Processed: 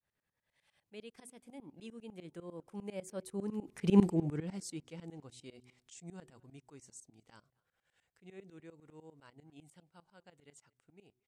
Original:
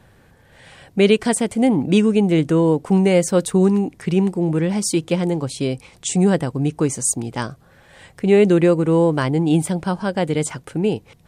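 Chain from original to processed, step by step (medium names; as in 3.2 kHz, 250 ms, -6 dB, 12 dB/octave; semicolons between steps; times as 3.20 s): Doppler pass-by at 4.02 s, 20 m/s, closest 1.4 m; de-hum 124.6 Hz, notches 3; tremolo saw up 10 Hz, depth 95%; speakerphone echo 230 ms, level -28 dB; tape noise reduction on one side only encoder only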